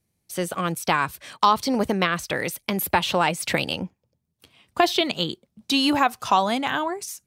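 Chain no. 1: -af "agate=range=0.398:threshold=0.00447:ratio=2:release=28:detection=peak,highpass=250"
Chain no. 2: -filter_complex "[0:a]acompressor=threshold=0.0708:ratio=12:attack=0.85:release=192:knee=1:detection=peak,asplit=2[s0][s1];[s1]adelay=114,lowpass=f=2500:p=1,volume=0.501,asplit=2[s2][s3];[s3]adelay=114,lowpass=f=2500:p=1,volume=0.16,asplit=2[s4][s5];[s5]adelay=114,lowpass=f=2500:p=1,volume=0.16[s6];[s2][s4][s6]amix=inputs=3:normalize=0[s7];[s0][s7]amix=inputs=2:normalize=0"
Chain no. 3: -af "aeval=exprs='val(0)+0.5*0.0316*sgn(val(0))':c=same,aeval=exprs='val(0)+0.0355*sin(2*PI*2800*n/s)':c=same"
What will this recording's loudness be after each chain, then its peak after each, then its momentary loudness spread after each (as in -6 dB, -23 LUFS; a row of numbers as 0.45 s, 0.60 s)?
-23.5 LUFS, -30.5 LUFS, -21.5 LUFS; -4.0 dBFS, -12.5 dBFS, -4.5 dBFS; 9 LU, 6 LU, 8 LU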